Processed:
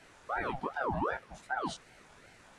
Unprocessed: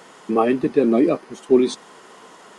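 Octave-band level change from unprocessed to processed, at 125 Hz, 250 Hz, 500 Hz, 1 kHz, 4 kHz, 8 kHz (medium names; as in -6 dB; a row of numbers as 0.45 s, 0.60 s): -9.0 dB, -23.5 dB, -21.0 dB, -7.0 dB, -12.0 dB, -13.0 dB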